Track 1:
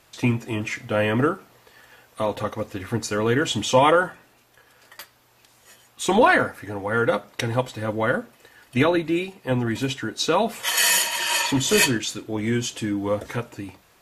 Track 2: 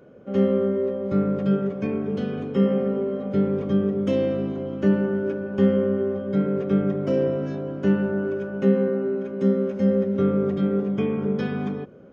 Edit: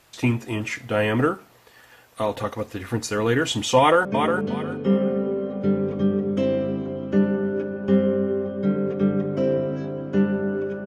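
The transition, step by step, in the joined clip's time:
track 1
0:03.78–0:04.05: delay throw 360 ms, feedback 25%, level −6 dB
0:04.05: continue with track 2 from 0:01.75

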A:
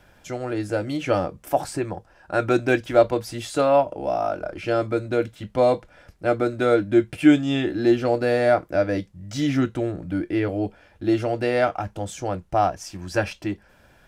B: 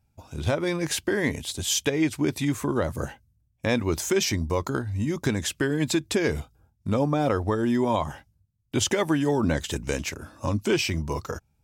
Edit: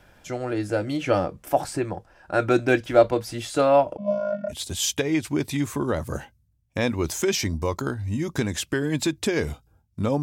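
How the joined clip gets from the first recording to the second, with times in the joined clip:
A
0:03.97–0:04.54: channel vocoder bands 16, square 203 Hz
0:04.51: continue with B from 0:01.39, crossfade 0.06 s

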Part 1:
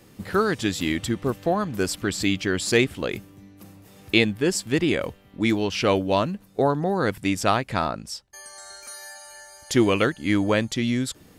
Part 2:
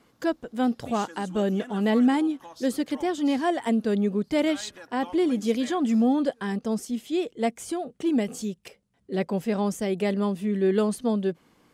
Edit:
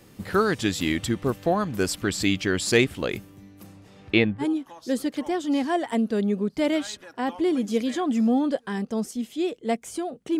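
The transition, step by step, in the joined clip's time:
part 1
0:03.66–0:04.46: low-pass filter 11,000 Hz → 1,200 Hz
0:04.42: continue with part 2 from 0:02.16, crossfade 0.08 s

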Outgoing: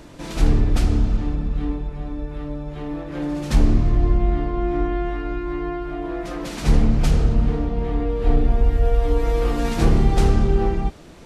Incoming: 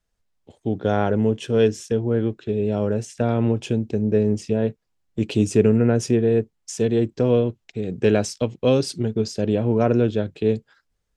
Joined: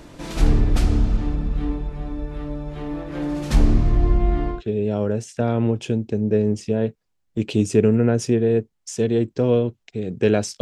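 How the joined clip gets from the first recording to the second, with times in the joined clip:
outgoing
0:04.56: continue with incoming from 0:02.37, crossfade 0.12 s

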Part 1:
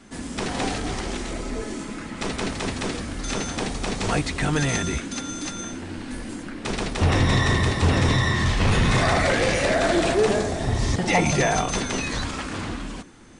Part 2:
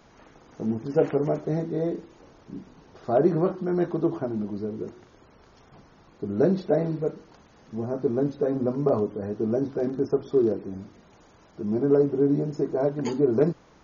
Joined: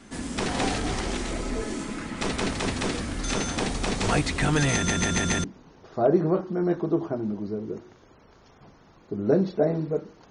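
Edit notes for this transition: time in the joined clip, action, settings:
part 1
0:04.74: stutter in place 0.14 s, 5 plays
0:05.44: continue with part 2 from 0:02.55

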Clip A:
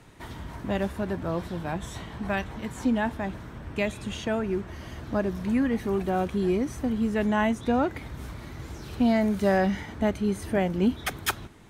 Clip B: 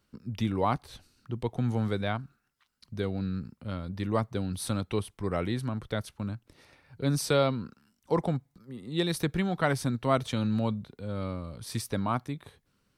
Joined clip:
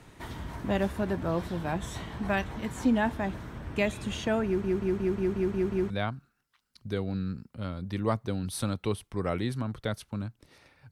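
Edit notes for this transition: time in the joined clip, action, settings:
clip A
0:04.46: stutter in place 0.18 s, 8 plays
0:05.90: continue with clip B from 0:01.97

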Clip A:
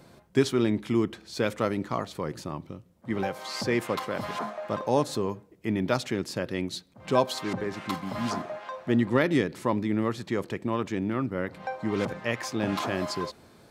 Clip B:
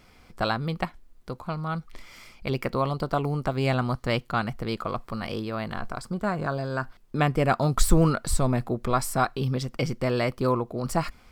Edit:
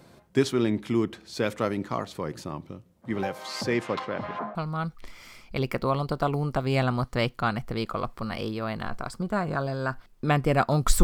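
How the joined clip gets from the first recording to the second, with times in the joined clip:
clip A
0:03.73–0:04.55: low-pass filter 8,400 Hz → 1,300 Hz
0:04.55: continue with clip B from 0:01.46

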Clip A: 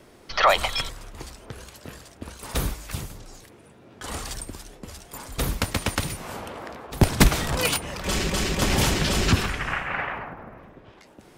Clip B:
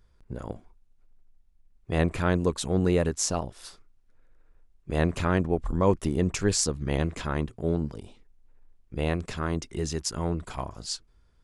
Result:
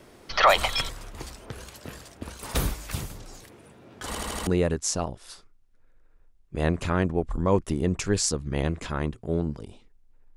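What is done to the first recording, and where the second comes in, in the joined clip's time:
clip A
0:04.07: stutter in place 0.08 s, 5 plays
0:04.47: continue with clip B from 0:02.82

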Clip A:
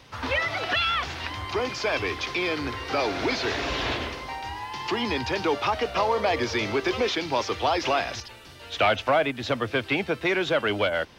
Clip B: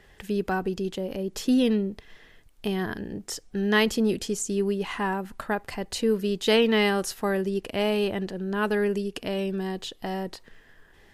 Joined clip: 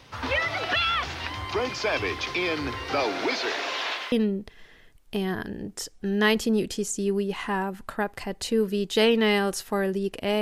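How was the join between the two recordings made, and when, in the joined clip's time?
clip A
0:03.03–0:04.12: high-pass filter 170 Hz → 1,100 Hz
0:04.12: continue with clip B from 0:01.63

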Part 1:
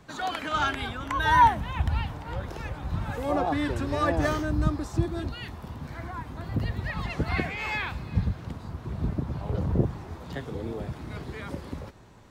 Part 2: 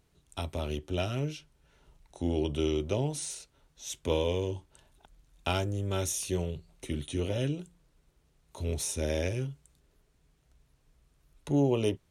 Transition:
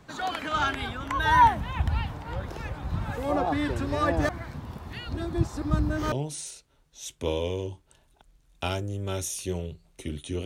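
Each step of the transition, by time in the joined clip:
part 1
0:04.29–0:06.12: reverse
0:06.12: continue with part 2 from 0:02.96

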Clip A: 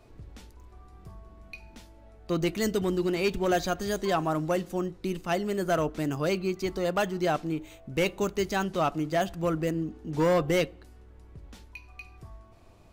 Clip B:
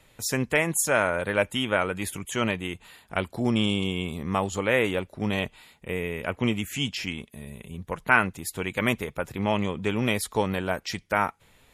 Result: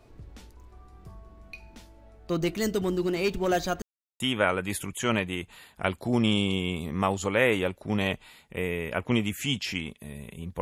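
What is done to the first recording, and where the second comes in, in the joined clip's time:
clip A
0:03.82–0:04.20: silence
0:04.20: continue with clip B from 0:01.52

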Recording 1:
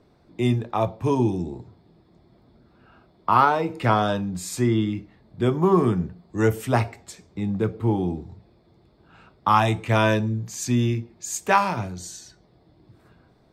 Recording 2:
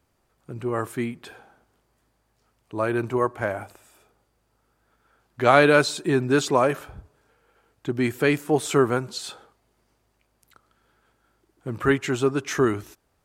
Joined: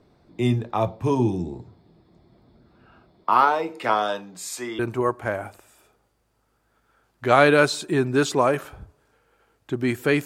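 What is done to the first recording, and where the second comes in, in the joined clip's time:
recording 1
0:03.23–0:04.79: high-pass filter 280 Hz → 610 Hz
0:04.79: continue with recording 2 from 0:02.95

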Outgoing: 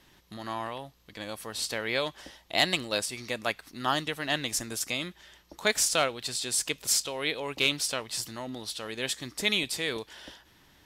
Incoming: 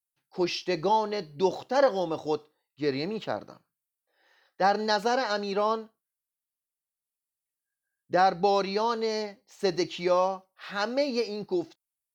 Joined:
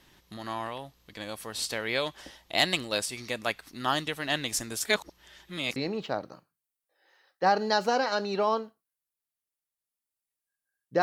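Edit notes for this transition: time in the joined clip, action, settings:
outgoing
0:04.85–0:05.76: reverse
0:05.76: continue with incoming from 0:02.94

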